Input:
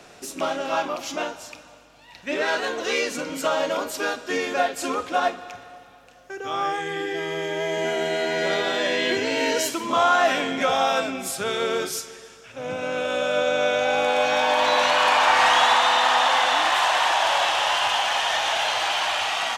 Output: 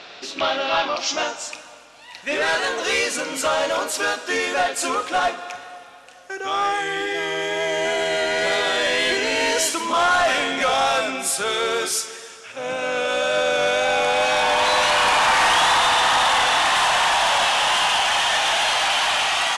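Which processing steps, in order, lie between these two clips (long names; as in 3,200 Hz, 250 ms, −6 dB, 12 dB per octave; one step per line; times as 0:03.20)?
mid-hump overdrive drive 15 dB, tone 6,300 Hz, clips at −9 dBFS
tape wow and flutter 23 cents
low-pass filter sweep 4,000 Hz → 10,000 Hz, 0:00.79–0:01.66
level −2.5 dB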